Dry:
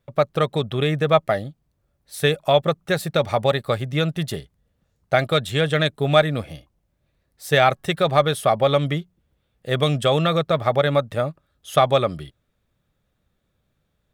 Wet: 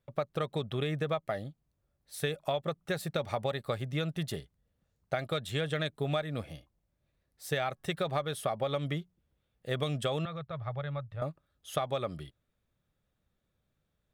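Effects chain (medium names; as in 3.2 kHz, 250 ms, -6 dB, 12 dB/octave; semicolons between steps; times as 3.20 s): 10.25–11.22 s: FFT filter 130 Hz 0 dB, 220 Hz -19 dB, 1.2 kHz -9 dB, 4.2 kHz -15 dB, 8.3 kHz -28 dB; compression 12:1, threshold -19 dBFS, peak gain reduction 10.5 dB; trim -8.5 dB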